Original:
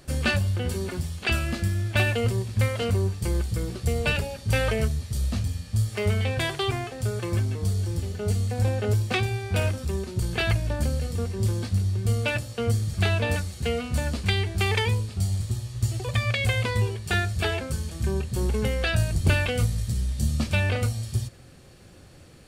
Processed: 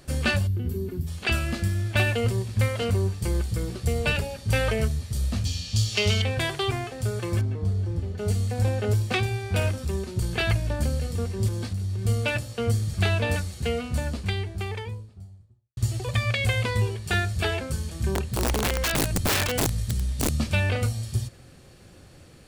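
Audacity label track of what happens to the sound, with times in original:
0.470000	1.070000	gain on a spectral selection 460–11,000 Hz −15 dB
5.450000	6.220000	flat-topped bell 4,200 Hz +14.5 dB
7.410000	8.180000	low-pass filter 1,300 Hz 6 dB per octave
11.480000	12.020000	downward compressor, threshold −25 dBFS
13.500000	15.770000	fade out and dull
18.140000	20.320000	wrap-around overflow gain 18 dB

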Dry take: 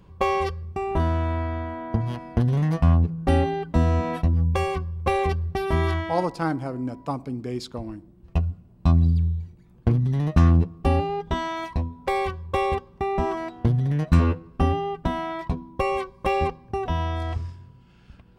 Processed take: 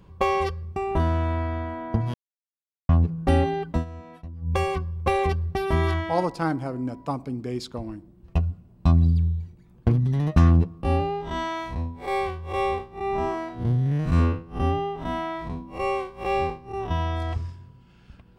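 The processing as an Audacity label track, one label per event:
2.140000	2.890000	silence
3.710000	4.550000	duck −17.5 dB, fades 0.14 s
10.830000	16.910000	spectrum smeared in time width 118 ms

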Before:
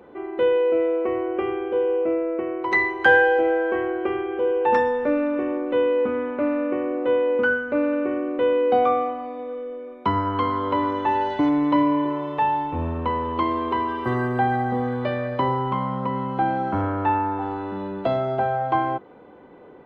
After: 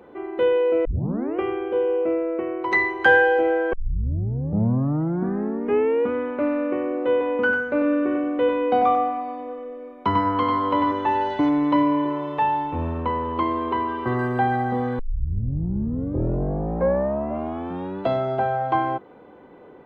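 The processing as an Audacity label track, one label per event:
0.850000	0.850000	tape start 0.53 s
3.730000	3.730000	tape start 2.38 s
7.110000	10.920000	single-tap delay 96 ms −5 dB
13.020000	14.190000	low-pass filter 3,100 Hz 6 dB per octave
14.990000	14.990000	tape start 3.03 s

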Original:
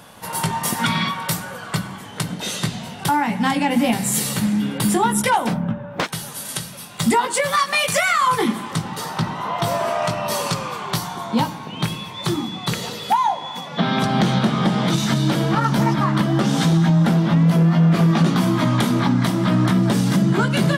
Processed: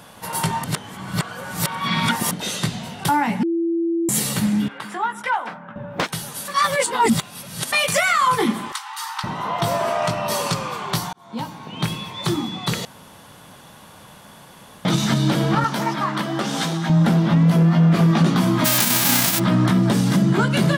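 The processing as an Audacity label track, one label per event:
0.640000	2.310000	reverse
3.430000	4.090000	beep over 335 Hz −18 dBFS
4.680000	5.760000	resonant band-pass 1,400 Hz, Q 1.4
6.480000	7.720000	reverse
8.720000	9.240000	Butterworth high-pass 820 Hz 96 dB per octave
11.130000	11.900000	fade in
12.850000	14.850000	fill with room tone
15.640000	16.900000	high-pass filter 480 Hz 6 dB per octave
18.640000	19.380000	spectral envelope flattened exponent 0.1

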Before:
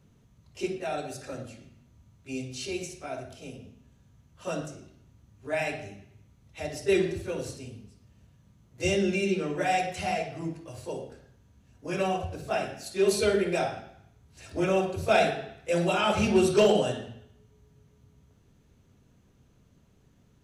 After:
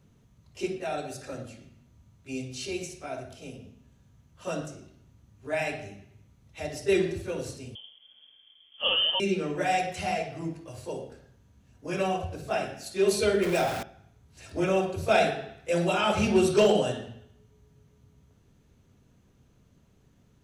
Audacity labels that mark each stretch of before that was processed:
7.750000	9.200000	voice inversion scrambler carrier 3,300 Hz
13.420000	13.830000	converter with a step at zero of −30.5 dBFS

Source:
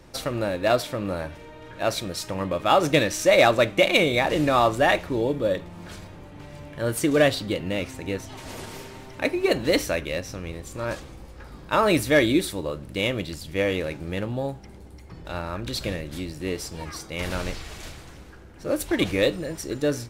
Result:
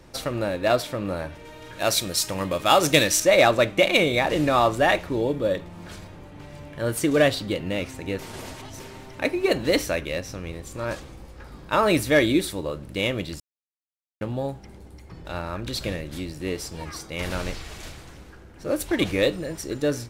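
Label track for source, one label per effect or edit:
1.450000	3.200000	high-shelf EQ 3,500 Hz +12 dB
8.190000	8.800000	reverse
13.400000	14.210000	silence

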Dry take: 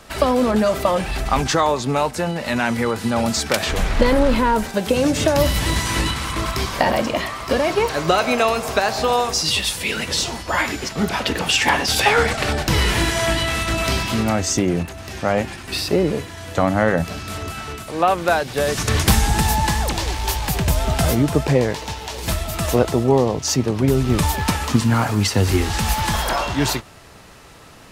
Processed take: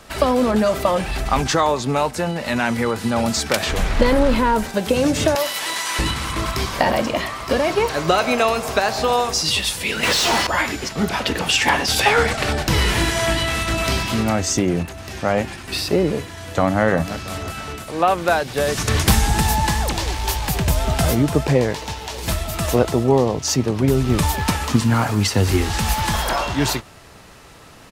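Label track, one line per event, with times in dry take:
5.350000	5.990000	high-pass filter 650 Hz
10.030000	10.470000	mid-hump overdrive drive 32 dB, tone 3,400 Hz, clips at −9 dBFS
16.290000	16.820000	delay throw 340 ms, feedback 45%, level −12.5 dB

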